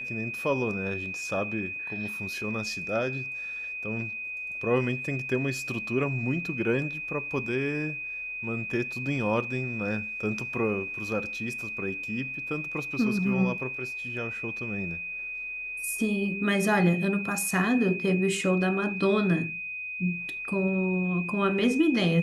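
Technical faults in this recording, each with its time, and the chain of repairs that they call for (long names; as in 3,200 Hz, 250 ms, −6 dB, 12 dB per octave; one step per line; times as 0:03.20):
whistle 2,500 Hz −33 dBFS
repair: notch filter 2,500 Hz, Q 30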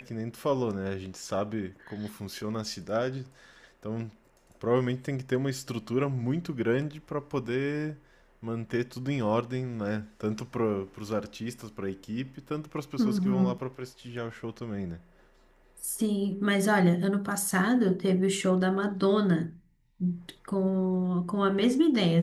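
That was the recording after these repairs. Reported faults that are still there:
none of them is left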